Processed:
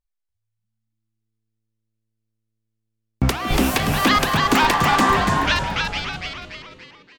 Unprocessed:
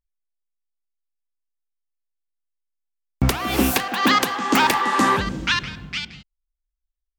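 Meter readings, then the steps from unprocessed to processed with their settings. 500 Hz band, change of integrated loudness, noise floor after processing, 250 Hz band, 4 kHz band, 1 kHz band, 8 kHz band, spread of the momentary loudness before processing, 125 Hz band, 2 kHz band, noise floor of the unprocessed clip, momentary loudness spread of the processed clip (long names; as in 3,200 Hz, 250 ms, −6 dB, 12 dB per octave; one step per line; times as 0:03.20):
+2.5 dB, +1.5 dB, −78 dBFS, +1.0 dB, +1.5 dB, +2.0 dB, 0.0 dB, 12 LU, +4.0 dB, +2.0 dB, −83 dBFS, 14 LU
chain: high-shelf EQ 12,000 Hz −8.5 dB
echo with shifted repeats 287 ms, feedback 48%, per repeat −110 Hz, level −3 dB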